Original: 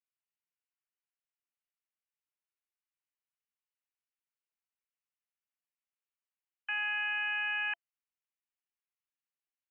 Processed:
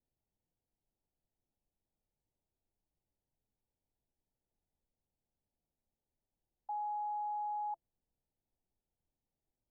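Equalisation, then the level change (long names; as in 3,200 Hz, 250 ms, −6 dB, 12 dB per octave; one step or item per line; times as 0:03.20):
Butterworth low-pass 920 Hz 72 dB per octave
spectral tilt −4 dB per octave
+8.5 dB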